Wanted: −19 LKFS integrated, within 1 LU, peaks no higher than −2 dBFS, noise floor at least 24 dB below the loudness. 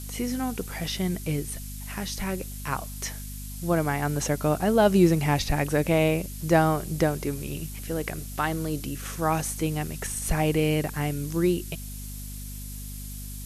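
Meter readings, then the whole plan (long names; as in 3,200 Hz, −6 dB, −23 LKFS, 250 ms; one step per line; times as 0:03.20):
mains hum 50 Hz; hum harmonics up to 250 Hz; level of the hum −36 dBFS; background noise floor −37 dBFS; target noise floor −51 dBFS; integrated loudness −26.5 LKFS; sample peak −8.0 dBFS; target loudness −19.0 LKFS
→ hum removal 50 Hz, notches 5
broadband denoise 14 dB, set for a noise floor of −37 dBFS
level +7.5 dB
brickwall limiter −2 dBFS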